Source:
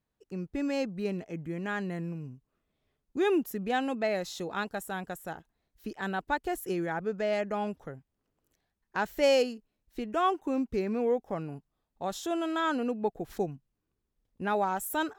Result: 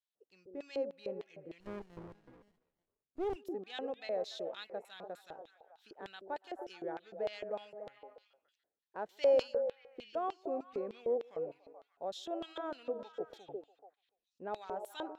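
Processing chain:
echo through a band-pass that steps 144 ms, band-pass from 370 Hz, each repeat 0.7 octaves, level −4.5 dB
auto-filter band-pass square 3.3 Hz 540–3,600 Hz
0:01.60–0:03.36: windowed peak hold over 33 samples
level −2.5 dB

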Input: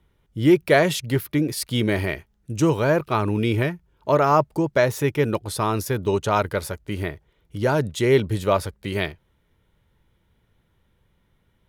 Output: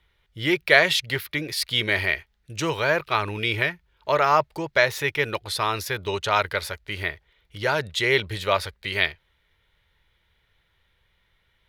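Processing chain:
octave-band graphic EQ 125/250/2,000/4,000/8,000 Hz −5/−12/+8/+9/−3 dB
level −2 dB

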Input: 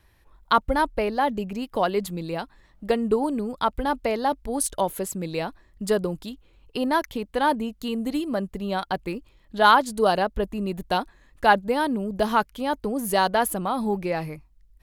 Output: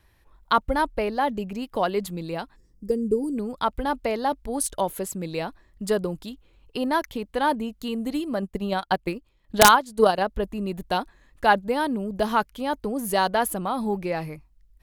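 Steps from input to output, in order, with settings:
0:02.56–0:03.37: gain on a spectral selection 520–4,600 Hz −20 dB
0:08.42–0:10.23: transient designer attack +7 dB, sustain −8 dB
wrap-around overflow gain 3 dB
level −1 dB

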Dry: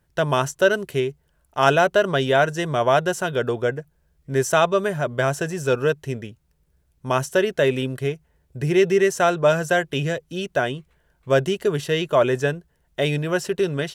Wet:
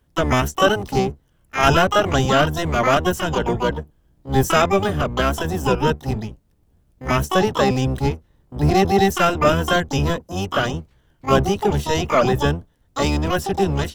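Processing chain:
sub-octave generator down 1 octave, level +3 dB
pitch-shifted copies added +12 semitones −3 dB
level −1 dB

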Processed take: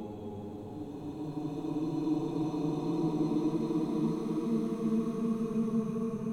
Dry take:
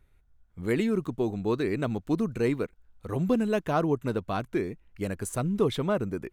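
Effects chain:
extreme stretch with random phases 23×, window 0.25 s, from 0:02.00
level −5 dB

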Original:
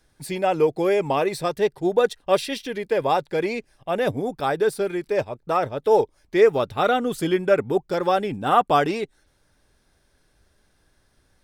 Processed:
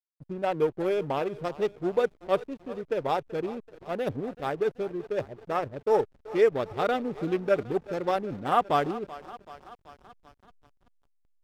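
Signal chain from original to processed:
adaptive Wiener filter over 41 samples
feedback echo with a high-pass in the loop 381 ms, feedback 73%, high-pass 360 Hz, level −15.5 dB
slack as between gear wheels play −36 dBFS
level −5 dB

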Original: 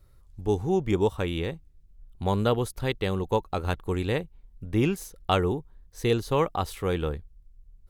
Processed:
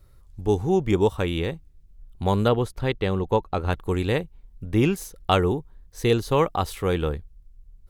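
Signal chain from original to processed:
0:02.48–0:03.73: low-pass filter 3,200 Hz 6 dB per octave
level +3.5 dB

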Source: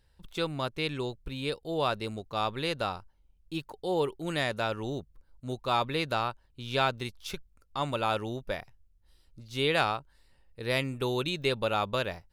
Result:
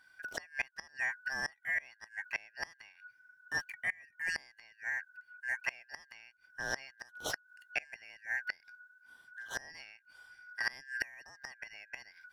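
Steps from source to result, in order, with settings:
band-splitting scrambler in four parts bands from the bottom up 3142
gate with flip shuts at −21 dBFS, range −27 dB
speech leveller within 4 dB 2 s

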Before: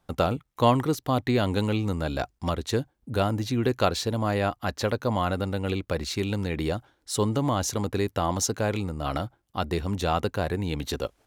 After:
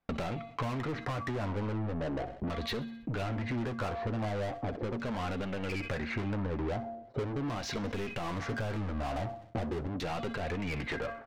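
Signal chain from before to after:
parametric band 2,200 Hz +10 dB 0.67 octaves
tuned comb filter 230 Hz, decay 0.6 s, harmonics odd, mix 60%
0:07.85–0:09.87: leveller curve on the samples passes 2
spectral tilt −4 dB per octave
auto-filter low-pass saw down 0.4 Hz 340–5,400 Hz
mid-hump overdrive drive 29 dB, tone 4,600 Hz, clips at −15.5 dBFS
downward compressor 12 to 1, threshold −30 dBFS, peak gain reduction 15.5 dB
noise gate −46 dBFS, range −25 dB
repeating echo 64 ms, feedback 60%, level −22 dB
flanger 0.38 Hz, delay 3.9 ms, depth 6.8 ms, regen −40%
level that may fall only so fast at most 95 dB per second
level +1.5 dB

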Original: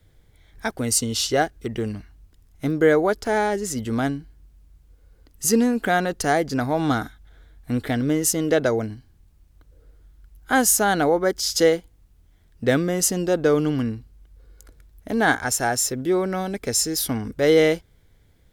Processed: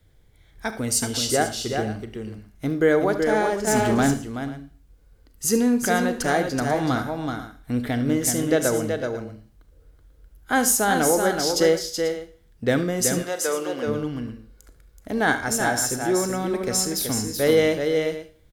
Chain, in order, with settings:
on a send: multi-tap delay 74/377/490 ms −14.5/−5.5/−15 dB
0:03.67–0:04.14: on the sum: leveller curve on the samples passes 2
0:13.22–0:13.86: high-pass filter 810 Hz → 390 Hz 12 dB per octave
four-comb reverb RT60 0.46 s, combs from 29 ms, DRR 11.5 dB
level −2 dB

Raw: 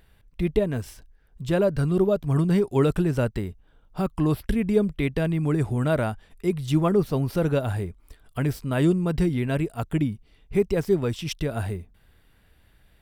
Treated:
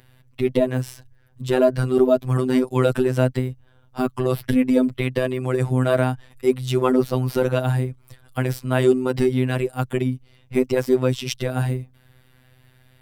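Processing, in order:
frequency shifter +29 Hz
phases set to zero 128 Hz
level +7 dB

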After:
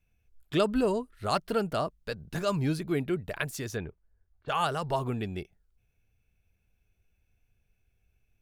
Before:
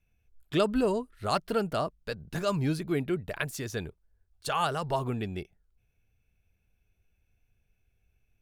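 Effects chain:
0:03.76–0:04.48: low-pass filter 2,900 Hz → 1,800 Hz 24 dB per octave

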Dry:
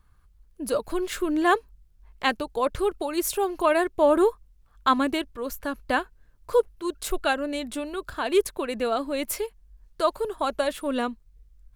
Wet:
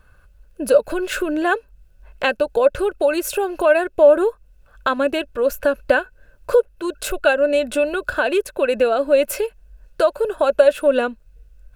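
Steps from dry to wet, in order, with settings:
downward compressor 2.5 to 1, threshold −32 dBFS, peak gain reduction 11.5 dB
hollow resonant body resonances 560/1,500/2,600 Hz, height 15 dB, ringing for 25 ms
level +7 dB

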